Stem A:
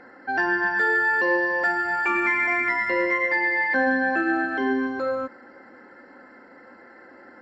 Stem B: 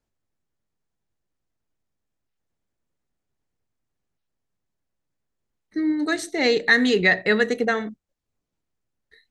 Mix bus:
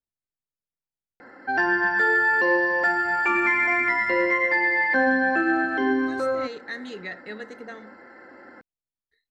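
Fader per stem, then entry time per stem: +1.0 dB, -17.5 dB; 1.20 s, 0.00 s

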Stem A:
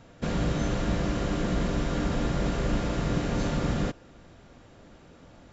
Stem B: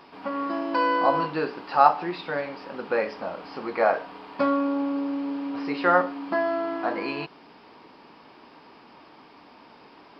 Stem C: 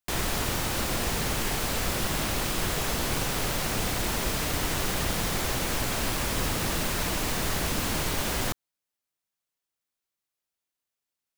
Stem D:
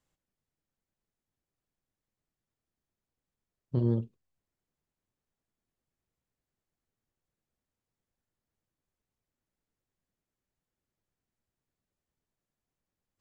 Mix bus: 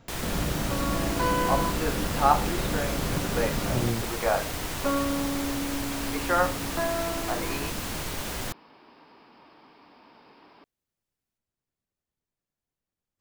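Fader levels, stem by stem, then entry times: -3.0 dB, -4.0 dB, -4.5 dB, -2.0 dB; 0.00 s, 0.45 s, 0.00 s, 0.00 s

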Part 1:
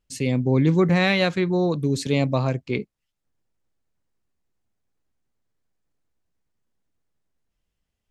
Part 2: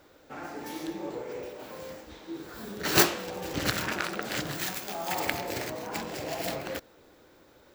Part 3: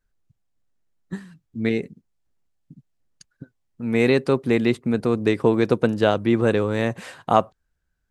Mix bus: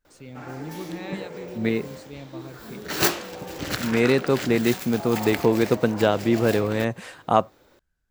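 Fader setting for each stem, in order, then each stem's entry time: -19.0 dB, 0.0 dB, -1.5 dB; 0.00 s, 0.05 s, 0.00 s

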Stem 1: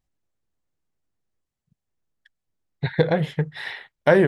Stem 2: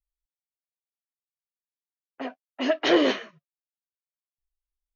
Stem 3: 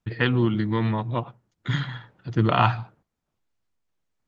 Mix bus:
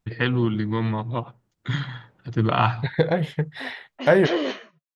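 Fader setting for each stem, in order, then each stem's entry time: -1.0 dB, -4.5 dB, -0.5 dB; 0.00 s, 1.40 s, 0.00 s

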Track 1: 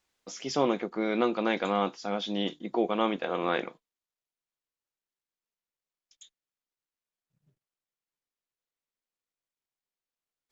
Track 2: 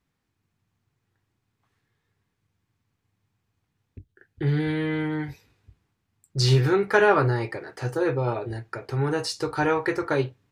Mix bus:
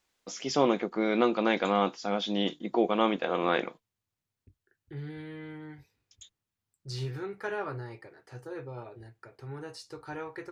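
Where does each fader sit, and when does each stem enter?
+1.5 dB, -16.0 dB; 0.00 s, 0.50 s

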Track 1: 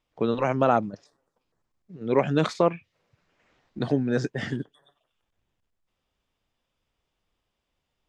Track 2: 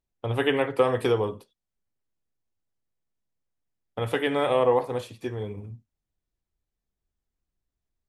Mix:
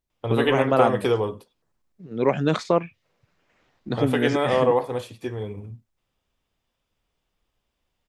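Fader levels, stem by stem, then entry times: +1.0 dB, +1.5 dB; 0.10 s, 0.00 s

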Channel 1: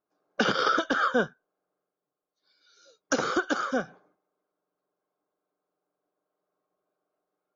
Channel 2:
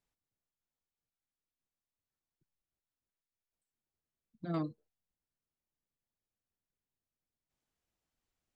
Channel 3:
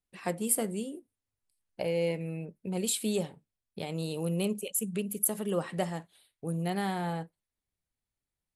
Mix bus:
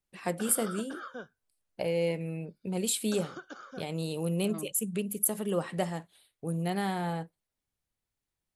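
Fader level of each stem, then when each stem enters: -18.0 dB, -7.0 dB, +0.5 dB; 0.00 s, 0.00 s, 0.00 s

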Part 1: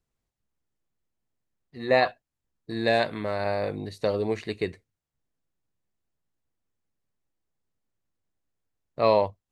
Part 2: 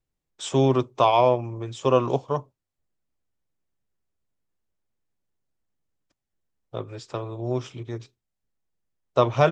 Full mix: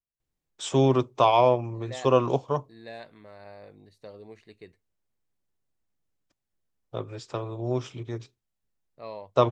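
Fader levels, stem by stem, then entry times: -19.0 dB, -1.0 dB; 0.00 s, 0.20 s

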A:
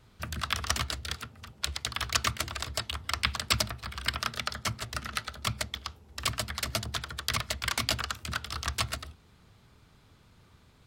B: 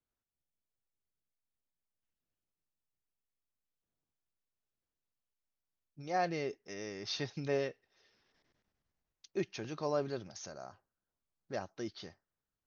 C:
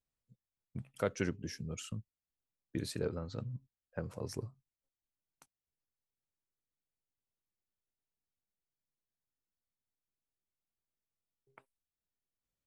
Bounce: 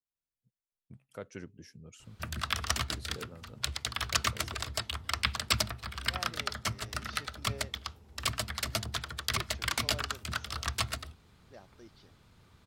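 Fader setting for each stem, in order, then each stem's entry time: -1.5 dB, -13.5 dB, -9.5 dB; 2.00 s, 0.00 s, 0.15 s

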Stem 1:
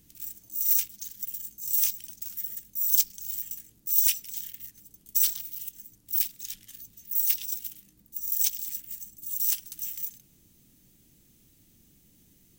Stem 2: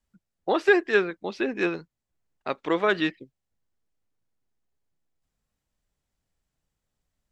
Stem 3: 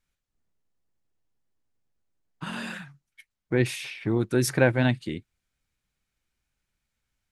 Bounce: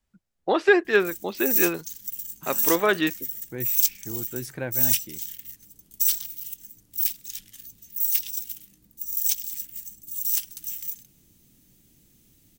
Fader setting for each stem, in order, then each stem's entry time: +1.5 dB, +1.5 dB, -11.5 dB; 0.85 s, 0.00 s, 0.00 s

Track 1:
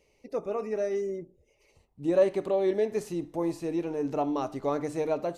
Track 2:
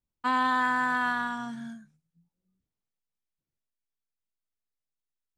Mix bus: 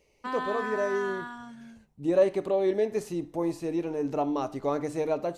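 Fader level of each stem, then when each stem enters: +0.5 dB, -8.0 dB; 0.00 s, 0.00 s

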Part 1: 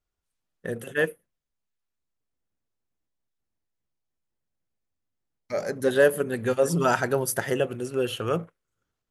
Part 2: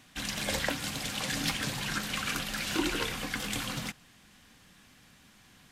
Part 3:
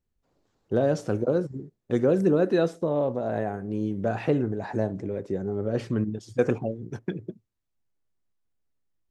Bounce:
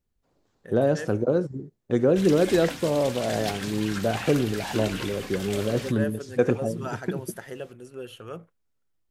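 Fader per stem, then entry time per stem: -12.0 dB, -2.5 dB, +1.5 dB; 0.00 s, 2.00 s, 0.00 s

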